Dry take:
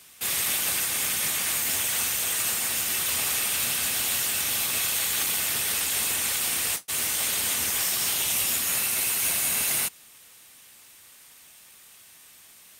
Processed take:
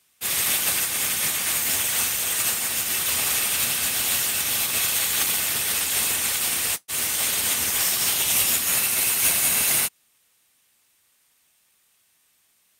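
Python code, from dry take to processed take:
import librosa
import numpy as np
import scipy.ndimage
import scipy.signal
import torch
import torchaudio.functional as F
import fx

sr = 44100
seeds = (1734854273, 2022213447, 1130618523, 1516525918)

y = fx.upward_expand(x, sr, threshold_db=-37.0, expansion=2.5)
y = y * 10.0 ** (6.5 / 20.0)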